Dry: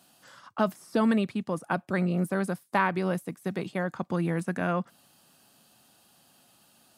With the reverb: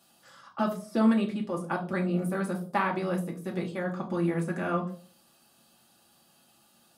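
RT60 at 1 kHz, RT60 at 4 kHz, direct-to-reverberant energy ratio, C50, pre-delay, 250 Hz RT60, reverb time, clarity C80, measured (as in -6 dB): 0.35 s, 0.30 s, -1.5 dB, 12.0 dB, 3 ms, 0.50 s, 0.45 s, 16.5 dB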